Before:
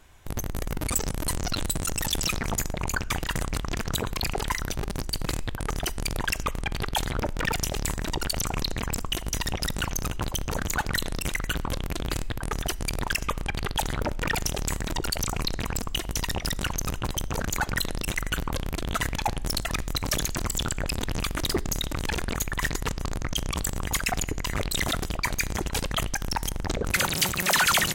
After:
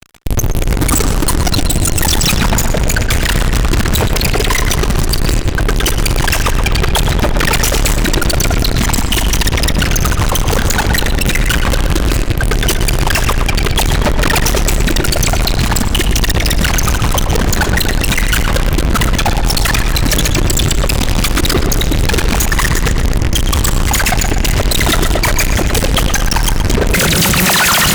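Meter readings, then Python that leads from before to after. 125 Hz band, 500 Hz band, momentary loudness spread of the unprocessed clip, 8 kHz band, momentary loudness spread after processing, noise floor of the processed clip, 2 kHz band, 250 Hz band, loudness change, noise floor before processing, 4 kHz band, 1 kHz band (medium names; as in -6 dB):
+17.0 dB, +15.5 dB, 4 LU, +13.5 dB, 3 LU, -15 dBFS, +13.5 dB, +16.5 dB, +15.0 dB, -35 dBFS, +14.0 dB, +13.0 dB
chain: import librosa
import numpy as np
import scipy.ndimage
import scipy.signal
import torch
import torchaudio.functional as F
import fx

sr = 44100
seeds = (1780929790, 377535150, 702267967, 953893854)

y = fx.rotary(x, sr, hz=0.75)
y = fx.fuzz(y, sr, gain_db=43.0, gate_db=-50.0)
y = fx.echo_tape(y, sr, ms=120, feedback_pct=72, wet_db=-6, lp_hz=3600.0, drive_db=3.0, wow_cents=30)
y = y * librosa.db_to_amplitude(3.0)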